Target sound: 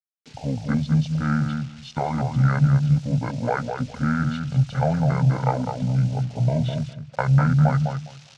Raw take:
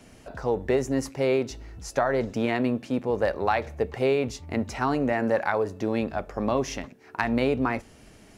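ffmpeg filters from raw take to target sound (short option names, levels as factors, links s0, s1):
-filter_complex "[0:a]agate=range=0.112:threshold=0.00794:ratio=16:detection=peak,afwtdn=0.0178,equalizer=f=230:w=1.1:g=13.5,aecho=1:1:0.8:0.86,areverse,acompressor=mode=upward:threshold=0.0282:ratio=2.5,areverse,acrusher=bits=8:mix=0:aa=0.000001,crystalizer=i=8:c=0,asetrate=25476,aresample=44100,atempo=1.73107,highpass=120,equalizer=f=190:t=q:w=4:g=-4,equalizer=f=320:t=q:w=4:g=-6,equalizer=f=2600:t=q:w=4:g=4,lowpass=f=5700:w=0.5412,lowpass=f=5700:w=1.3066,asplit=2[s0][s1];[s1]adelay=204,lowpass=f=1400:p=1,volume=0.562,asplit=2[s2][s3];[s3]adelay=204,lowpass=f=1400:p=1,volume=0.18,asplit=2[s4][s5];[s5]adelay=204,lowpass=f=1400:p=1,volume=0.18[s6];[s2][s4][s6]amix=inputs=3:normalize=0[s7];[s0][s7]amix=inputs=2:normalize=0,volume=0.562"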